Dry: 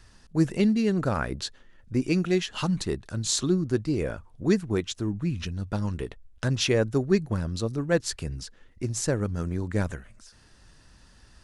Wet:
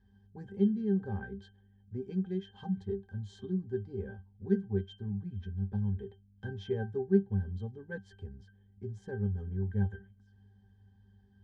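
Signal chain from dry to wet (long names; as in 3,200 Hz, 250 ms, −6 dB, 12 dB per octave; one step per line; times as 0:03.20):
mains hum 50 Hz, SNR 28 dB
resonances in every octave G, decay 0.16 s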